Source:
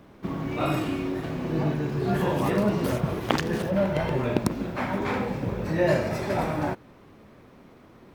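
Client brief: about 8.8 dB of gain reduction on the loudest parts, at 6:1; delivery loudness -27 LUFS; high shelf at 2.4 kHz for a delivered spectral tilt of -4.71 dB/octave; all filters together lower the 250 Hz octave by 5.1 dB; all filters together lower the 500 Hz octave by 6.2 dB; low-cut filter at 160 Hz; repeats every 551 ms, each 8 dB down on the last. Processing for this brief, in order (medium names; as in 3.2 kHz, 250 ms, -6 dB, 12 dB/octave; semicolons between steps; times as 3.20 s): high-pass 160 Hz; peaking EQ 250 Hz -3.5 dB; peaking EQ 500 Hz -7.5 dB; treble shelf 2.4 kHz +7.5 dB; compression 6:1, threshold -32 dBFS; feedback delay 551 ms, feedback 40%, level -8 dB; trim +8.5 dB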